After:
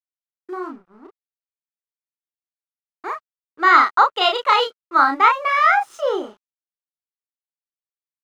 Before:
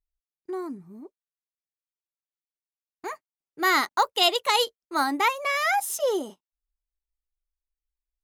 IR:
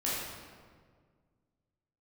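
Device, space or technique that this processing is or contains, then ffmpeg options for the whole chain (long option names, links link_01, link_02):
pocket radio on a weak battery: -filter_complex "[0:a]highpass=290,lowpass=3300,aeval=exprs='sgn(val(0))*max(abs(val(0))-0.00188,0)':channel_layout=same,equalizer=frequency=1300:width_type=o:width=0.5:gain=11.5,asplit=2[link_01][link_02];[link_02]adelay=33,volume=-3.5dB[link_03];[link_01][link_03]amix=inputs=2:normalize=0,volume=2.5dB"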